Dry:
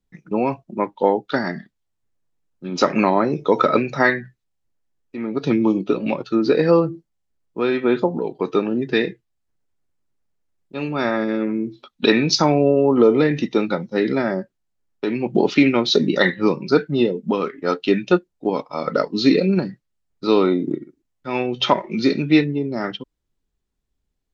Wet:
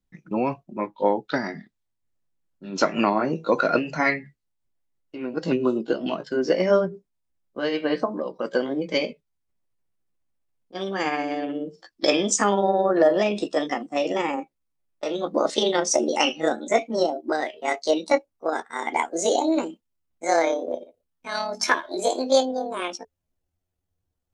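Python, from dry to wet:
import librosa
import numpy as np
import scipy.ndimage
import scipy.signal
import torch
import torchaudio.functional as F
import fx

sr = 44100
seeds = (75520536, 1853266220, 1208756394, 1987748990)

y = fx.pitch_glide(x, sr, semitones=10.5, runs='starting unshifted')
y = fx.notch(y, sr, hz=430.0, q=12.0)
y = y * 10.0 ** (-3.0 / 20.0)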